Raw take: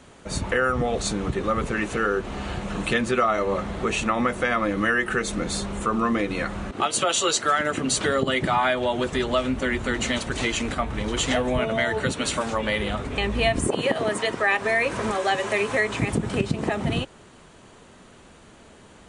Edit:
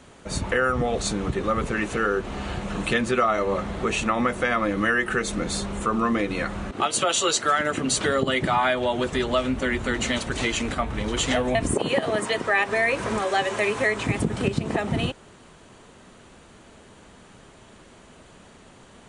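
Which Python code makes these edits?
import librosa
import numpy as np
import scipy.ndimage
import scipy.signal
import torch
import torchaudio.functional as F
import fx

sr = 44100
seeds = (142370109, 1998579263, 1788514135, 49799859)

y = fx.edit(x, sr, fx.cut(start_s=11.55, length_s=1.93), tone=tone)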